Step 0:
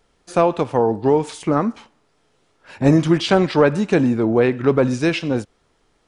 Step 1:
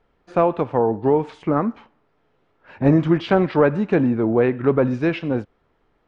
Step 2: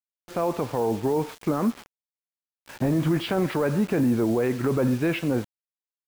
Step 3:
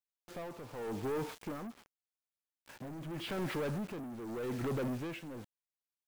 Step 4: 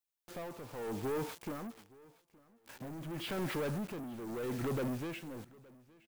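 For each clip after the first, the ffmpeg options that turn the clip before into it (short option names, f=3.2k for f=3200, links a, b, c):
-af "lowpass=2.2k,volume=-1.5dB"
-af "alimiter=limit=-15dB:level=0:latency=1:release=22,acrusher=bits=6:mix=0:aa=0.000001"
-af "asoftclip=type=tanh:threshold=-27.5dB,tremolo=f=0.85:d=0.69,volume=-4.5dB"
-af "crystalizer=i=0.5:c=0,aecho=1:1:868|1736:0.0668|0.0221"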